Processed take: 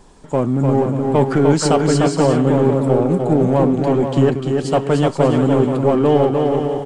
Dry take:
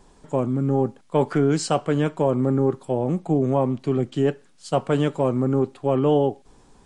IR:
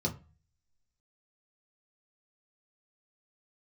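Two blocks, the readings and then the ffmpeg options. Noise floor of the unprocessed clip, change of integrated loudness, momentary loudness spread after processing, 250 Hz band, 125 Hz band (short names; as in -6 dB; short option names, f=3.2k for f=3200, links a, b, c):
-55 dBFS, +6.5 dB, 4 LU, +7.0 dB, +7.0 dB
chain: -filter_complex "[0:a]asplit=2[a][b];[b]asoftclip=type=hard:threshold=-20.5dB,volume=-4dB[c];[a][c]amix=inputs=2:normalize=0,aecho=1:1:300|480|588|652.8|691.7:0.631|0.398|0.251|0.158|0.1,volume=2dB"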